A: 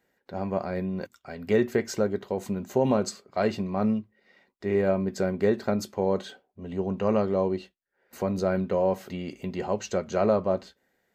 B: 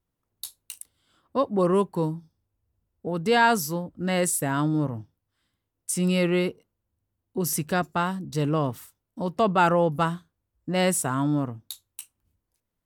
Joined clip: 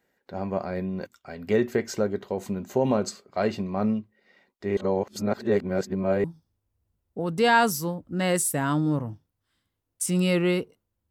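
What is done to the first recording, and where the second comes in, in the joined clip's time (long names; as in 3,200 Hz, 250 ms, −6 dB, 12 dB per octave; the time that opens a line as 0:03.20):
A
0:04.77–0:06.24: reverse
0:06.24: continue with B from 0:02.12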